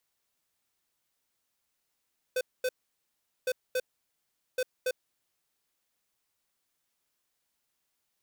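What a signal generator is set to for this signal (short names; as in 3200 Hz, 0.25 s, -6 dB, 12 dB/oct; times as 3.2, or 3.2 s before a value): beep pattern square 508 Hz, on 0.05 s, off 0.23 s, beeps 2, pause 0.78 s, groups 3, -28.5 dBFS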